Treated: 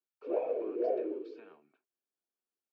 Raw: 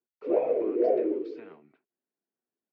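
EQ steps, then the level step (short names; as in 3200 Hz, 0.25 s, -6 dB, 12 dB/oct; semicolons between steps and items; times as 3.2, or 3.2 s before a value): HPF 460 Hz 6 dB/oct; Butterworth band-stop 2000 Hz, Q 6.2; -4.5 dB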